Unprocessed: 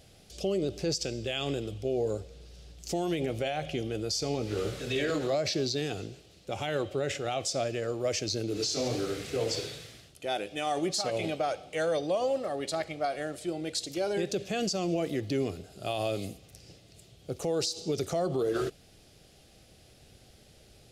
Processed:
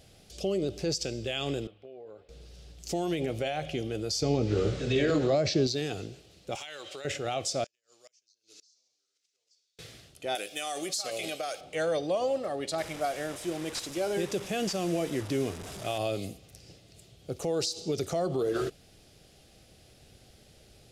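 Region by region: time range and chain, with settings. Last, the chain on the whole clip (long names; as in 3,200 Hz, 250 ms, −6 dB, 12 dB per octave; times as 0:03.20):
0:01.67–0:02.29: high-pass filter 1,300 Hz 6 dB per octave + downward compressor 5 to 1, threshold −41 dBFS + high-frequency loss of the air 490 metres
0:04.22–0:05.67: low-pass filter 7,500 Hz 24 dB per octave + low-shelf EQ 470 Hz +7.5 dB
0:06.55–0:07.05: bad sample-rate conversion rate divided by 2×, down none, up hold + meter weighting curve ITU-R 468 + downward compressor 16 to 1, threshold −37 dBFS
0:07.64–0:09.79: resonant band-pass 5,900 Hz, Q 2.1 + gate with flip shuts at −40 dBFS, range −31 dB
0:10.35–0:11.61: RIAA equalisation recording + downward compressor 4 to 1, threshold −30 dBFS + Butterworth band-reject 930 Hz, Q 4.7
0:12.78–0:15.98: linear delta modulator 64 kbit/s, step −35.5 dBFS + notch filter 4,300 Hz
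whole clip: no processing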